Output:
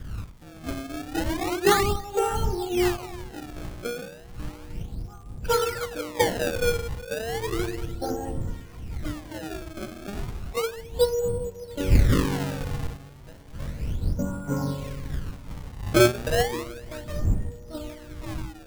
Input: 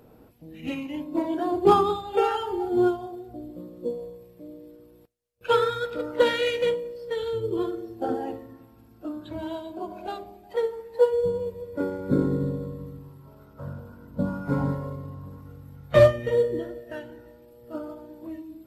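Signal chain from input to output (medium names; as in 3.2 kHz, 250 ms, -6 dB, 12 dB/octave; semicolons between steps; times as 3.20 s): wind noise 89 Hz -29 dBFS; feedback echo behind a band-pass 1136 ms, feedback 46%, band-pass 1.5 kHz, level -15.5 dB; decimation with a swept rate 26×, swing 160% 0.33 Hz; crackle 140 per s -43 dBFS; trim -2 dB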